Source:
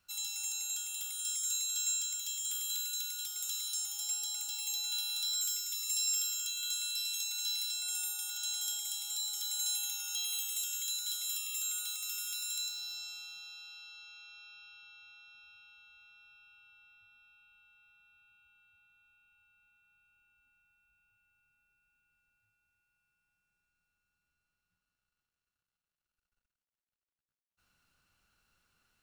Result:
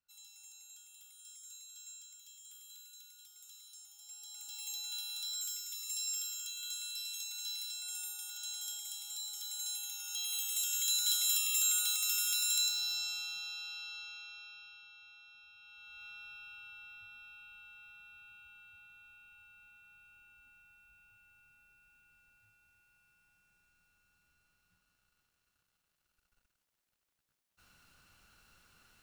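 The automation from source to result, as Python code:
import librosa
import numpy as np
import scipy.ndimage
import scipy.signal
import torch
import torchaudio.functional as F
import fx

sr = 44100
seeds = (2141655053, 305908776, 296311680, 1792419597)

y = fx.gain(x, sr, db=fx.line((4.01, -18.0), (4.62, -5.5), (9.87, -5.5), (11.06, 6.0), (13.97, 6.0), (14.89, -1.0), (15.55, -1.0), (16.06, 10.0)))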